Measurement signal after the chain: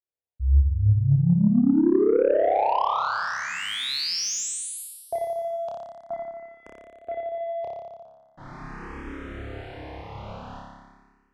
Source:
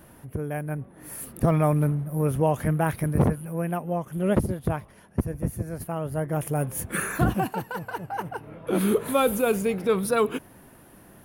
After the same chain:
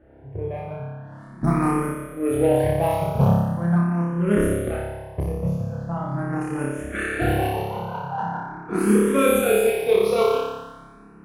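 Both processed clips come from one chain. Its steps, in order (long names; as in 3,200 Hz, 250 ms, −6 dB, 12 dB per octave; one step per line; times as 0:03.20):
low-pass that shuts in the quiet parts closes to 1,100 Hz, open at −18.5 dBFS
in parallel at −10 dB: soft clipping −25.5 dBFS
on the sum: flutter between parallel walls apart 5 metres, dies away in 1.5 s
harmonic generator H 4 −40 dB, 6 −42 dB, 7 −29 dB, 8 −41 dB, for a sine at −4.5 dBFS
frequency shifter mixed with the dry sound +0.42 Hz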